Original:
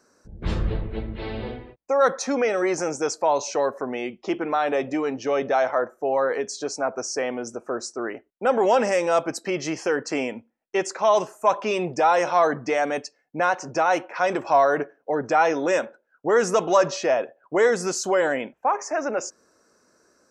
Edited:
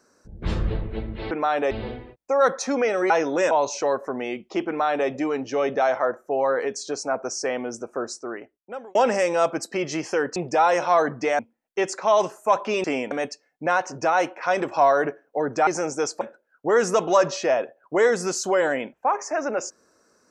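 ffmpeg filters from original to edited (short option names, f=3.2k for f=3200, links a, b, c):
-filter_complex "[0:a]asplit=12[a][b][c][d][e][f][g][h][i][j][k][l];[a]atrim=end=1.312[m];[b]atrim=start=4.408:end=4.812[n];[c]atrim=start=1.308:end=2.702[o];[d]atrim=start=15.398:end=15.812[p];[e]atrim=start=3.238:end=8.68,asetpts=PTS-STARTPTS,afade=t=out:st=4.482:d=0.96[q];[f]atrim=start=8.68:end=10.092,asetpts=PTS-STARTPTS,afade=t=in:d=0.004:c=hsin[r];[g]atrim=start=11.808:end=12.842[s];[h]atrim=start=10.358:end=11.812[t];[i]atrim=start=10.088:end=10.362[u];[j]atrim=start=12.838:end=15.402[v];[k]atrim=start=2.698:end=3.242[w];[l]atrim=start=15.808[x];[m][n]acrossfade=d=0.004:c1=hsin:c2=hsin[y];[y][o]acrossfade=d=0.004:c1=hsin:c2=hsin[z];[z][p]acrossfade=d=0.004:c1=hsin:c2=hsin[aa];[q][r]concat=n=2:v=0:a=1[ab];[aa][ab]acrossfade=d=0.004:c1=hsin:c2=hsin[ac];[ac][s]acrossfade=d=0.004:c1=hsin:c2=hsin[ad];[ad][t]acrossfade=d=0.004:c1=hsin:c2=hsin[ae];[ae][u]acrossfade=d=0.004:c1=hsin:c2=hsin[af];[af][v]acrossfade=d=0.004:c1=hsin:c2=hsin[ag];[ag][w]acrossfade=d=0.004:c1=hsin:c2=hsin[ah];[ah][x]acrossfade=d=0.004:c1=hsin:c2=hsin"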